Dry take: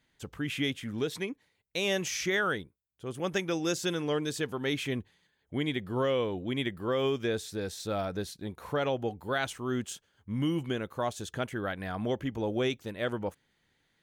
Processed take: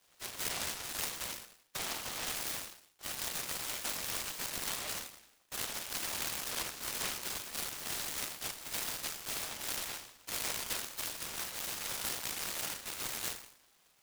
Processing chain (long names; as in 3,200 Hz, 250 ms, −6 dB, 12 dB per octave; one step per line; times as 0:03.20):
neighbouring bands swapped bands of 2,000 Hz
parametric band 960 Hz +15 dB 1.2 octaves
downward compressor 6 to 1, threshold −35 dBFS, peak gain reduction 15 dB
random phases in short frames
bit reduction 11 bits
on a send: flutter between parallel walls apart 6.9 metres, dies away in 0.62 s
on the sum: multi-voice chorus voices 2, 1.1 Hz, delay 13 ms, depth 3 ms
high-pass filter 620 Hz 24 dB per octave
short delay modulated by noise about 2,100 Hz, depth 0.29 ms